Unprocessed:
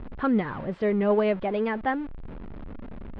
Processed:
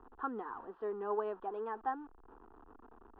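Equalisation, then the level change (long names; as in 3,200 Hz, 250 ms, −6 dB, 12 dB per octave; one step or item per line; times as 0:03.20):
low-pass filter 3,400 Hz 6 dB per octave
three-way crossover with the lows and the highs turned down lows −18 dB, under 420 Hz, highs −23 dB, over 2,400 Hz
phaser with its sweep stopped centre 580 Hz, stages 6
−5.0 dB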